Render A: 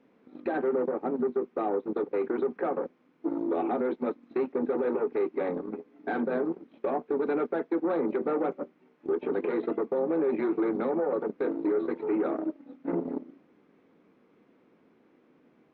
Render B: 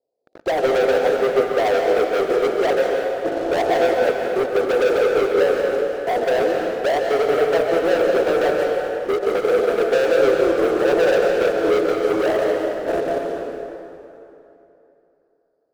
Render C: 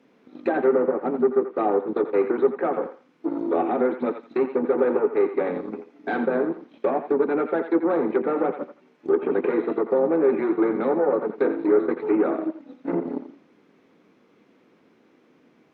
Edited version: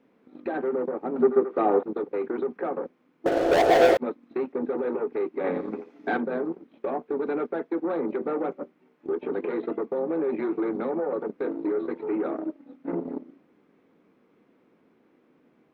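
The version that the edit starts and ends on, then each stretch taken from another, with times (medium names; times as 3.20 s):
A
1.16–1.83 s: from C
3.26–3.97 s: from B
5.44–6.17 s: from C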